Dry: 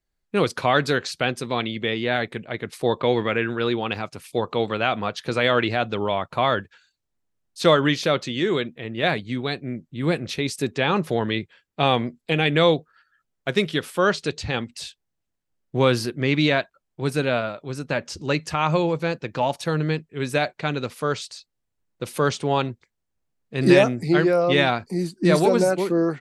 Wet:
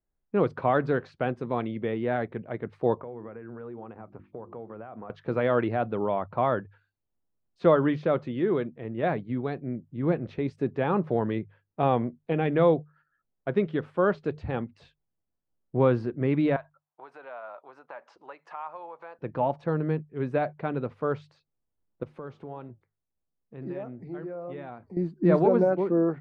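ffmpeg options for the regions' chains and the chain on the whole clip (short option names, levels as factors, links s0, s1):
-filter_complex "[0:a]asettb=1/sr,asplit=3[s0][s1][s2];[s0]atrim=end=2.974[s3];[s1]atrim=start=2.97:end=5.1,asetpts=PTS-STARTPTS,afade=t=in:d=0.004:c=qsin,afade=t=out:st=2.126:d=0.004:c=qsin,bandreject=f=50:t=h:w=6,bandreject=f=100:t=h:w=6,bandreject=f=150:t=h:w=6,bandreject=f=200:t=h:w=6,bandreject=f=250:t=h:w=6,bandreject=f=300:t=h:w=6,bandreject=f=350:t=h:w=6,acompressor=threshold=0.02:ratio=5:attack=3.2:release=140:knee=1:detection=peak,lowpass=1700[s4];[s2]atrim=start=5.096[s5];[s3][s4]acrossfade=d=0.004:c1=hsin:c2=qsin[s6];[s6][s5]acrossfade=d=0.004:c1=qsin:c2=hsin,asettb=1/sr,asplit=3[s7][s8][s9];[s7]atrim=end=16.564[s10];[s8]atrim=start=16.56:end=19.19,asetpts=PTS-STARTPTS,afade=t=in:d=0.004:c=qsin,afade=t=out:st=2.626:d=0.004:c=qsin,acompressor=threshold=0.0316:ratio=5:attack=3.2:release=140:knee=1:detection=peak,highpass=f=880:t=q:w=1.8[s11];[s9]atrim=start=19.186[s12];[s10][s11]acrossfade=d=0.004:c1=hsin:c2=qsin[s13];[s13][s12]acrossfade=d=0.004:c1=qsin:c2=hsin,asettb=1/sr,asplit=3[s14][s15][s16];[s14]atrim=end=22.034[s17];[s15]atrim=start=22.03:end=24.97,asetpts=PTS-STARTPTS,afade=t=in:d=0.004:c=qsin,afade=t=out:st=2.936:d=0.004:c=qsin,acompressor=threshold=0.0178:ratio=2:attack=3.2:release=140:knee=1:detection=peak,flanger=delay=3.5:depth=4:regen=-88:speed=1.5:shape=triangular[s18];[s16]atrim=start=24.966[s19];[s17][s18]acrossfade=d=0.004:c1=hsin:c2=qsin[s20];[s20][s19]acrossfade=d=0.004:c1=qsin:c2=hsin,lowpass=1100,bandreject=f=50:t=h:w=6,bandreject=f=100:t=h:w=6,bandreject=f=150:t=h:w=6,volume=0.75"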